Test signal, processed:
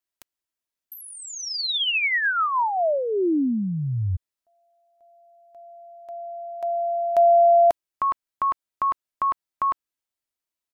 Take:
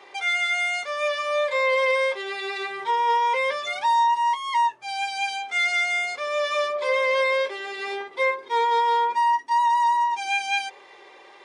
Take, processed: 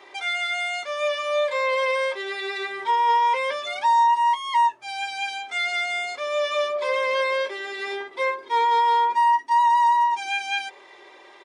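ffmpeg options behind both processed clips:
-filter_complex "[0:a]aecho=1:1:3.1:0.32,acrossover=split=4400[a][b];[b]acompressor=threshold=-43dB:ratio=6[c];[a][c]amix=inputs=2:normalize=0"

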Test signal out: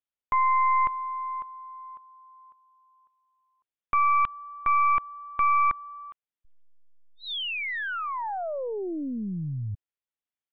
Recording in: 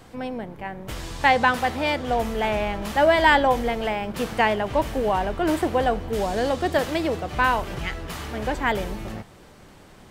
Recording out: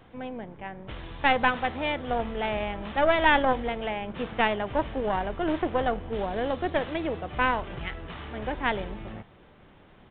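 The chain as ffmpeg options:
-af "aeval=exprs='0.631*(cos(1*acos(clip(val(0)/0.631,-1,1)))-cos(1*PI/2))+0.126*(cos(2*acos(clip(val(0)/0.631,-1,1)))-cos(2*PI/2))+0.0141*(cos(3*acos(clip(val(0)/0.631,-1,1)))-cos(3*PI/2))+0.0794*(cos(6*acos(clip(val(0)/0.631,-1,1)))-cos(6*PI/2))+0.0316*(cos(8*acos(clip(val(0)/0.631,-1,1)))-cos(8*PI/2))':c=same,aresample=8000,aresample=44100,volume=-5dB"

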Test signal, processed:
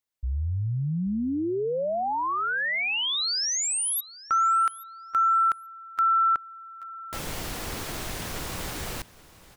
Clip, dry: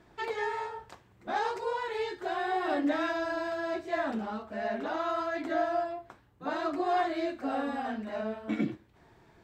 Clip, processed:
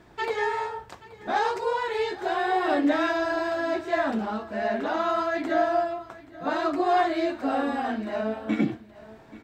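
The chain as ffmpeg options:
-af "aecho=1:1:829|1658:0.112|0.0168,volume=6dB"

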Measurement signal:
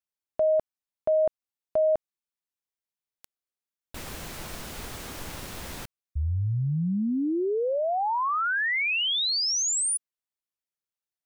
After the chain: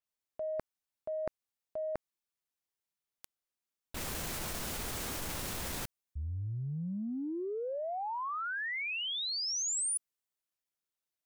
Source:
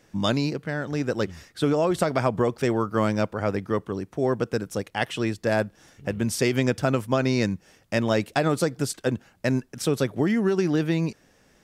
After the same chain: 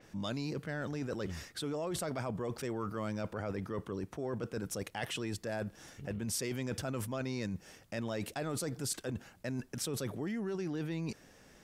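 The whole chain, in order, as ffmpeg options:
-af "areverse,acompressor=threshold=-37dB:ratio=6:attack=5.8:release=39:knee=1:detection=peak,areverse,adynamicequalizer=threshold=0.00316:dfrequency=5600:dqfactor=0.7:tfrequency=5600:tqfactor=0.7:attack=5:release=100:ratio=0.375:range=2:mode=boostabove:tftype=highshelf"

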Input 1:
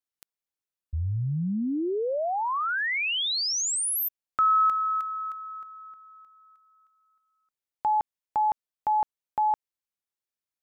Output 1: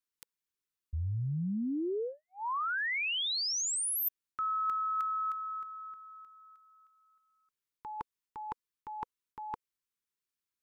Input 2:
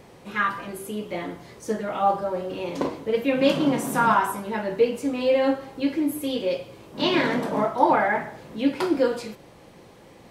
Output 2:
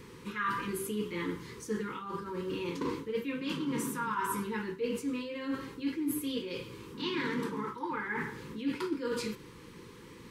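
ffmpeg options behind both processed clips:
-af "areverse,acompressor=threshold=-33dB:ratio=10:attack=80:release=120:knee=1:detection=rms,areverse,asuperstop=centerf=670:order=8:qfactor=1.6"

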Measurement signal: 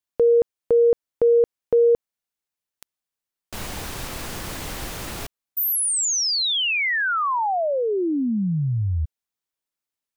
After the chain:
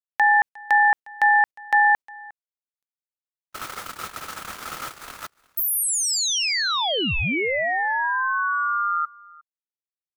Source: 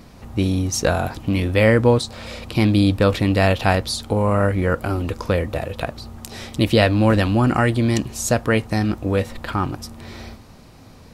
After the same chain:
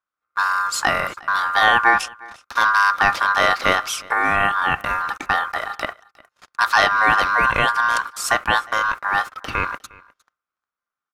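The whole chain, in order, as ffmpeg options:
-af "aeval=exprs='val(0)*sin(2*PI*1300*n/s)':c=same,agate=range=-44dB:threshold=-33dB:ratio=16:release=76:detection=rms,aecho=1:1:357:0.0668,aeval=exprs='0.708*(cos(1*acos(clip(val(0)/0.708,-1,1)))-cos(1*PI/2))+0.00562*(cos(2*acos(clip(val(0)/0.708,-1,1)))-cos(2*PI/2))+0.01*(cos(3*acos(clip(val(0)/0.708,-1,1)))-cos(3*PI/2))':c=same,volume=2.5dB"

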